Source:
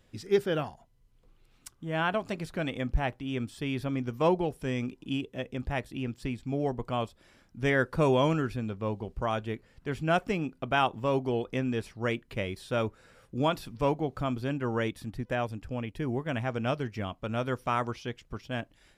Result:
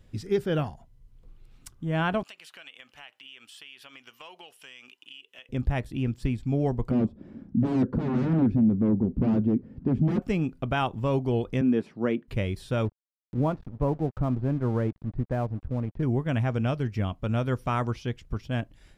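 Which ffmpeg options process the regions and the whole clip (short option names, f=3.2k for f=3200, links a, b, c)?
-filter_complex "[0:a]asettb=1/sr,asplit=3[a][b][c];[a]atrim=end=2.234[d];[b]atrim=start=2.23:end=5.49,asetpts=PTS-STARTPTS,afade=t=in:d=0.004:c=qsin,afade=t=out:st=3.256:d=0.004:c=qsin,highpass=1.3k,equalizer=f=2.9k:t=o:w=0.29:g=13.5,acompressor=threshold=-44dB:ratio=4:attack=3.2:release=140:knee=1:detection=peak[e];[c]atrim=start=5.486[f];[d][e]acrossfade=d=0.004:c1=hsin:c2=qsin[g];[g][f]acrossfade=d=0.004:c1=qsin:c2=hsin,asettb=1/sr,asplit=3[h][i][j];[h]atrim=end=6.914[k];[i]atrim=start=6.91:end=10.22,asetpts=PTS-STARTPTS,afade=t=in:d=0.004:c=qsin,afade=t=out:st=3.306:d=0.004:c=qsin,aeval=exprs='0.237*sin(PI/2*7.08*val(0)/0.237)':c=same,bandpass=f=240:t=q:w=2.8[l];[j]atrim=start=10.216[m];[k][l]acrossfade=d=0.004:c1=hsin:c2=qsin[n];[n][m]acrossfade=d=0.004:c1=qsin:c2=hsin,asettb=1/sr,asplit=3[o][p][q];[o]atrim=end=11.614[r];[p]atrim=start=11.61:end=12.28,asetpts=PTS-STARTPTS,afade=t=in:d=0.004:c=qsin,afade=t=out:st=0.666:d=0.004:c=qsin,highpass=f=230:w=0.5412,highpass=f=230:w=1.3066,aemphasis=mode=reproduction:type=riaa[s];[q]atrim=start=12.276[t];[r][s]acrossfade=d=0.004:c1=hsin:c2=qsin[u];[u][t]acrossfade=d=0.004:c1=qsin:c2=hsin,asettb=1/sr,asplit=3[v][w][x];[v]atrim=end=12.854[y];[w]atrim=start=12.85:end=16.03,asetpts=PTS-STARTPTS,afade=t=in:d=0.004:c=qsin,afade=t=out:st=3.176:d=0.004:c=qsin,lowpass=1.1k,aeval=exprs='sgn(val(0))*max(abs(val(0))-0.00355,0)':c=same,acompressor=mode=upward:threshold=-48dB:ratio=2.5:attack=3.2:release=140:knee=2.83:detection=peak[z];[x]atrim=start=16.026[aa];[y][z]acrossfade=d=0.004:c1=hsin:c2=qsin[ab];[ab][aa]acrossfade=d=0.004:c1=qsin:c2=hsin,lowshelf=f=210:g=12,alimiter=limit=-15dB:level=0:latency=1:release=217"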